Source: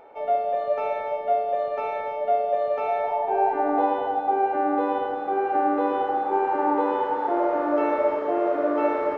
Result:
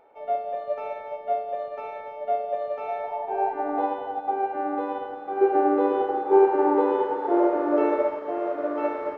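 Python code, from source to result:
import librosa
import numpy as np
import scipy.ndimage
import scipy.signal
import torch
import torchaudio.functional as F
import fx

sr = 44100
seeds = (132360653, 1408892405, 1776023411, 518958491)

y = fx.peak_eq(x, sr, hz=390.0, db=11.0, octaves=0.55, at=(5.41, 8.04))
y = fx.upward_expand(y, sr, threshold_db=-30.0, expansion=1.5)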